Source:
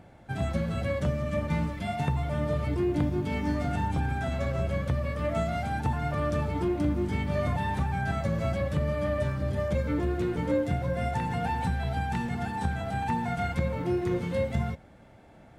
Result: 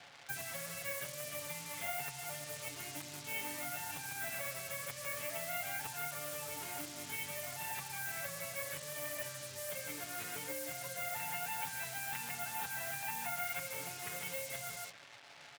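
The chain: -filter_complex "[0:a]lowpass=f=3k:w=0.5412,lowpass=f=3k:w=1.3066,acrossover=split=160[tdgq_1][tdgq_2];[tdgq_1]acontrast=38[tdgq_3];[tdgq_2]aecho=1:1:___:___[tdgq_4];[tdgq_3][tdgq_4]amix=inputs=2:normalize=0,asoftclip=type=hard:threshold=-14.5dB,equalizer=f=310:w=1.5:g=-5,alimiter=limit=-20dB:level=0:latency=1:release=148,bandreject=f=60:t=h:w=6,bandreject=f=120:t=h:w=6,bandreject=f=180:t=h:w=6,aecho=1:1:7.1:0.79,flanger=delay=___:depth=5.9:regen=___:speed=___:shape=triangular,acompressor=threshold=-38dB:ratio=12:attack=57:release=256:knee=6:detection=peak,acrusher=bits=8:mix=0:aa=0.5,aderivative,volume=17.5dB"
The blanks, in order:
150, 0.398, 5.3, 88, 1.3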